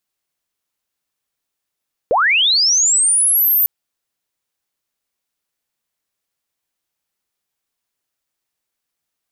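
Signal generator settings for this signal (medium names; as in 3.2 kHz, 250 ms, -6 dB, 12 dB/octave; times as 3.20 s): sweep linear 430 Hz -> 14 kHz -11 dBFS -> -11 dBFS 1.55 s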